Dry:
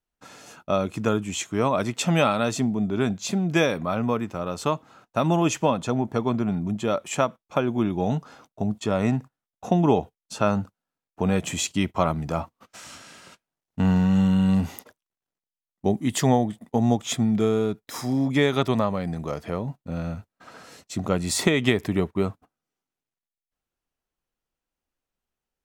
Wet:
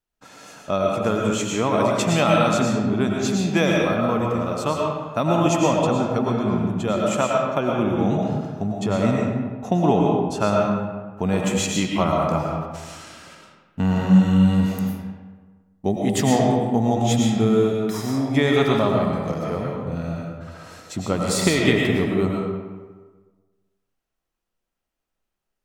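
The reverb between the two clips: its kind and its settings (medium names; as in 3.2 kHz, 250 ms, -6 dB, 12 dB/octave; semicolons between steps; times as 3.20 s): algorithmic reverb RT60 1.4 s, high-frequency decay 0.6×, pre-delay 70 ms, DRR -1.5 dB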